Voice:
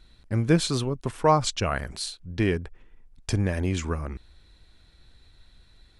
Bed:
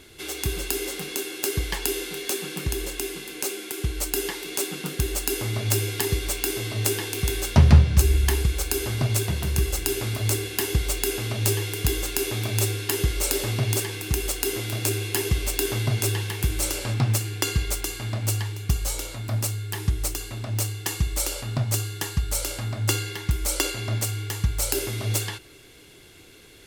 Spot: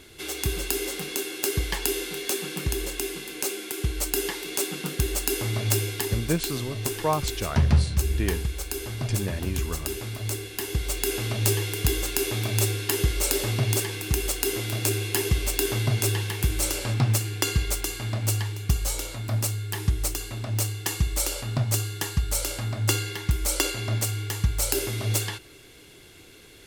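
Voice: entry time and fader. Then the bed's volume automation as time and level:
5.80 s, −5.0 dB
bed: 0:05.67 0 dB
0:06.37 −6 dB
0:10.57 −6 dB
0:11.17 0 dB

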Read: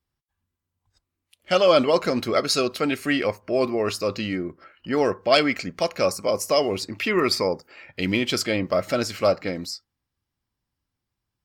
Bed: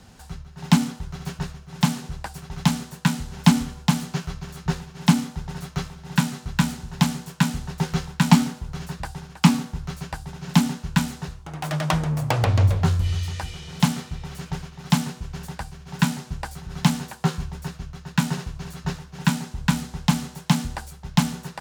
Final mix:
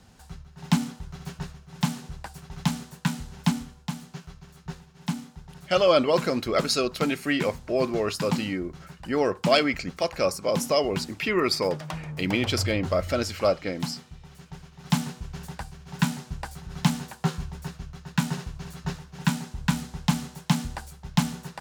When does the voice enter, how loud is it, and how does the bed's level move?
4.20 s, −2.5 dB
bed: 0:03.27 −5.5 dB
0:03.80 −12.5 dB
0:14.52 −12.5 dB
0:14.96 −3.5 dB

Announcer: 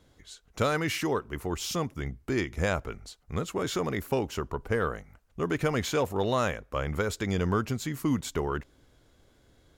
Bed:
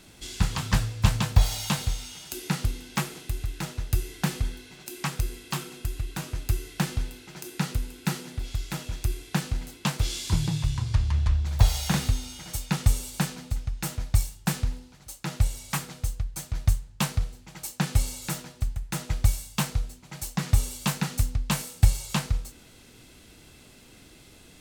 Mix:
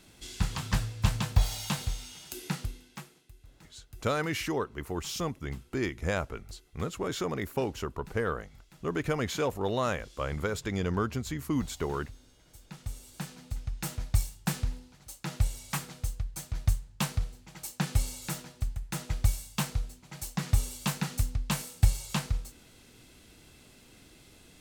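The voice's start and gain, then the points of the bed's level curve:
3.45 s, −2.5 dB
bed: 0:02.48 −5 dB
0:03.32 −24 dB
0:12.44 −24 dB
0:13.72 −4 dB

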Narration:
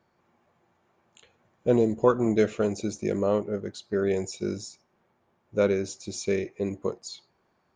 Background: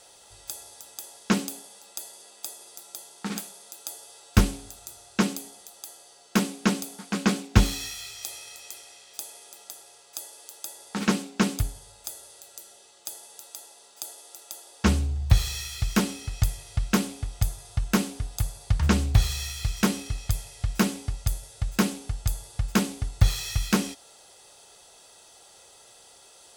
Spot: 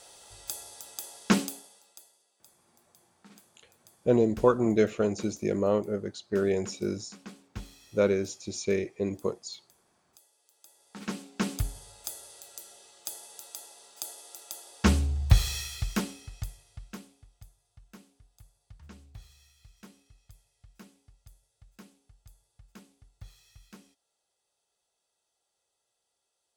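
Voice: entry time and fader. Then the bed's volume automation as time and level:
2.40 s, −1.0 dB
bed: 0:01.40 0 dB
0:02.27 −22.5 dB
0:10.44 −22.5 dB
0:11.78 −1 dB
0:15.57 −1 dB
0:17.53 −28.5 dB

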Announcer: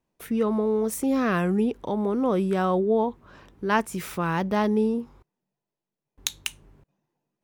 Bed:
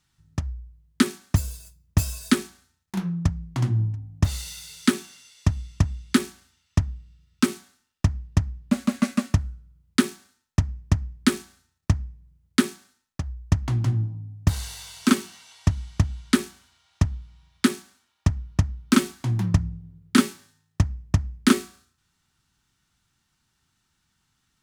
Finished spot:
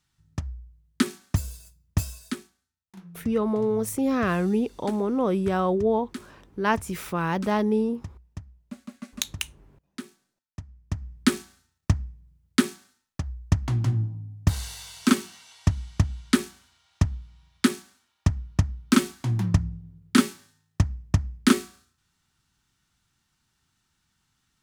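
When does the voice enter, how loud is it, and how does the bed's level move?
2.95 s, −0.5 dB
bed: 0:01.96 −3.5 dB
0:02.57 −18 dB
0:10.66 −18 dB
0:11.19 −1 dB

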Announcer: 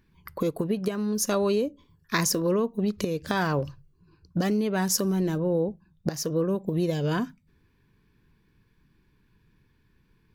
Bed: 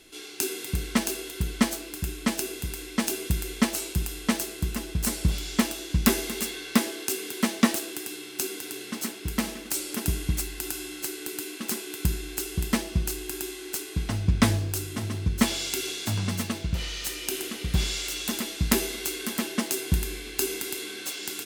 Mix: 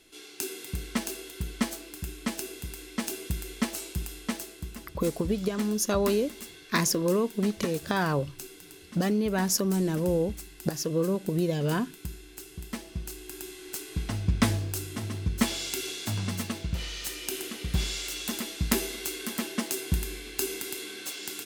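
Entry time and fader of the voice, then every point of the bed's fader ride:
4.60 s, −1.0 dB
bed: 0:04.11 −5.5 dB
0:04.96 −12.5 dB
0:12.59 −12.5 dB
0:13.98 −3 dB

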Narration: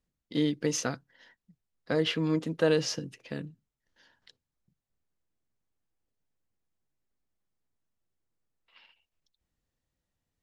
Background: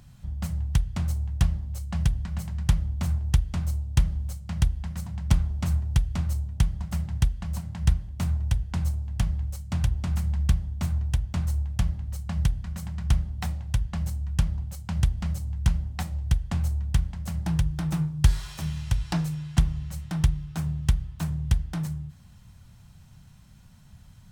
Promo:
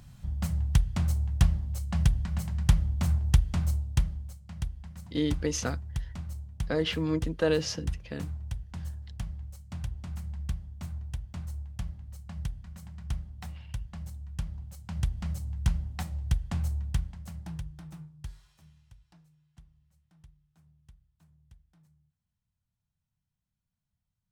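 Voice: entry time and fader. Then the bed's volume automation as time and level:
4.80 s, −1.0 dB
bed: 0:03.72 0 dB
0:04.38 −11 dB
0:14.38 −11 dB
0:15.38 −4 dB
0:16.80 −4 dB
0:19.21 −34 dB

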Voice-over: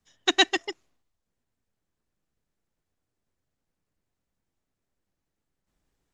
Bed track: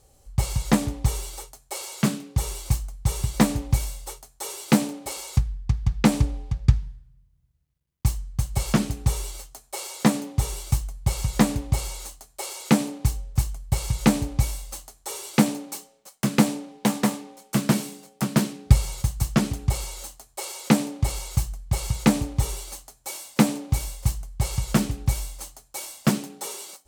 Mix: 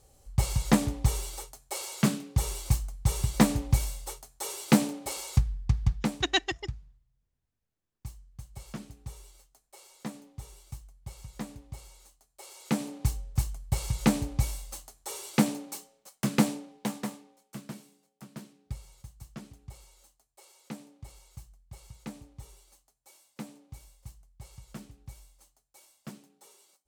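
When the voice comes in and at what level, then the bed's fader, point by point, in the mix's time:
5.95 s, −6.0 dB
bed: 0:05.89 −2.5 dB
0:06.22 −19.5 dB
0:12.17 −19.5 dB
0:13.03 −5 dB
0:16.44 −5 dB
0:17.86 −23 dB

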